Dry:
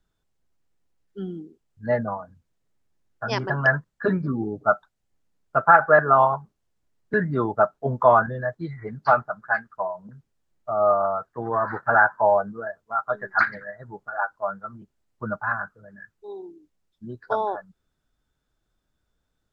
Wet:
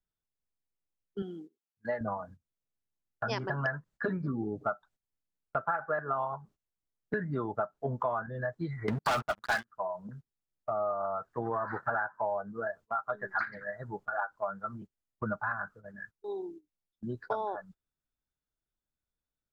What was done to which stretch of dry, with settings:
1.22–2.01 s: high-pass 650 Hz 6 dB/octave
8.88–9.68 s: waveshaping leveller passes 5
whole clip: gate -47 dBFS, range -18 dB; compression 6:1, threshold -30 dBFS

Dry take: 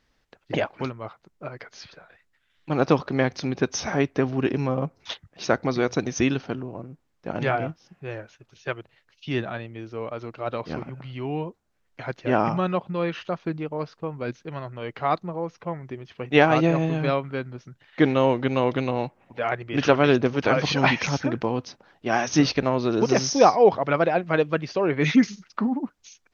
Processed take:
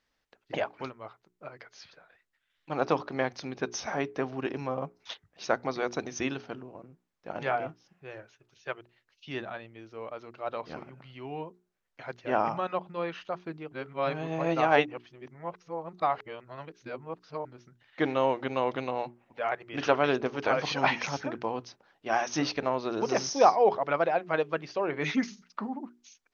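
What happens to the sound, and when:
13.72–17.45 s: reverse
whole clip: bass shelf 260 Hz -8 dB; hum notches 60/120/180/240/300/360/420 Hz; dynamic bell 830 Hz, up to +5 dB, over -35 dBFS, Q 0.93; trim -7 dB

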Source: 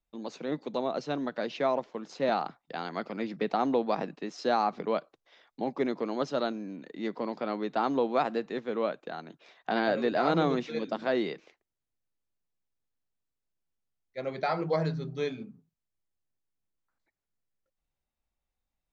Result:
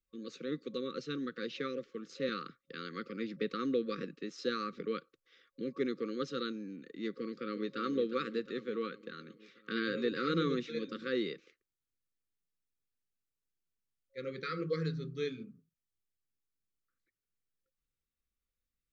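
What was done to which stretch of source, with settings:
7.11–7.78 s: echo throw 360 ms, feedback 65%, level -9 dB
whole clip: dynamic bell 3.8 kHz, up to +5 dB, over -58 dBFS, Q 7.6; FFT band-reject 540–1100 Hz; trim -4.5 dB

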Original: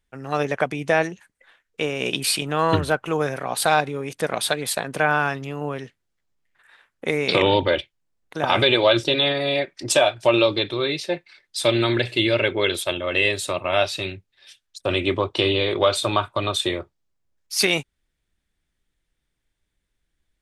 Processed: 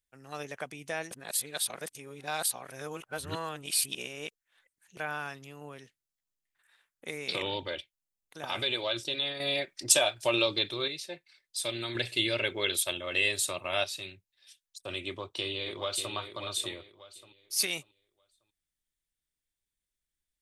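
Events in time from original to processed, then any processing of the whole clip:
1.11–4.97 s: reverse
9.40–10.88 s: gain +6.5 dB
11.95–13.84 s: gain +5.5 dB
15.07–16.14 s: echo throw 590 ms, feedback 30%, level -8 dB
whole clip: pre-emphasis filter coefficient 0.8; trim -4 dB

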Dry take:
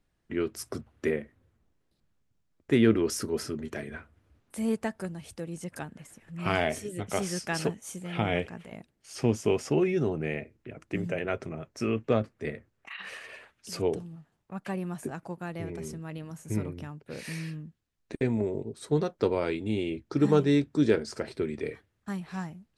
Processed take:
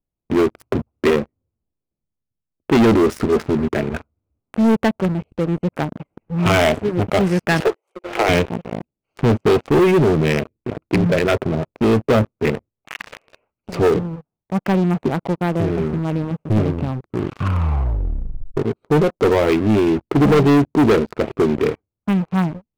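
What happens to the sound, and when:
7.60–8.29 s: steep high-pass 340 Hz 96 dB/octave
16.72 s: tape stop 1.85 s
whole clip: local Wiener filter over 25 samples; resonant high shelf 3.9 kHz -14 dB, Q 1.5; waveshaping leveller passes 5

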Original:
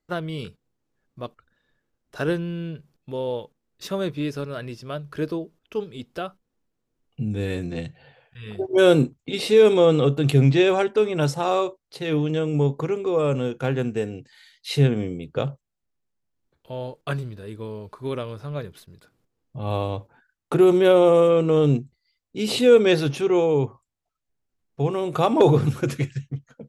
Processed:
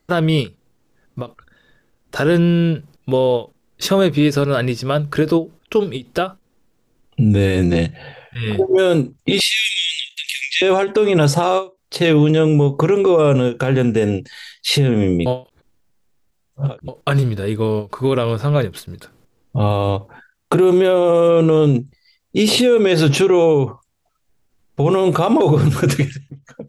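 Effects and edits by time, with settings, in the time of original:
9.40–10.62 s: steep high-pass 1.9 kHz 96 dB/octave
15.26–16.88 s: reverse
whole clip: compression, threshold -20 dBFS; loudness maximiser +21 dB; endings held to a fixed fall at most 250 dB/s; trim -5.5 dB

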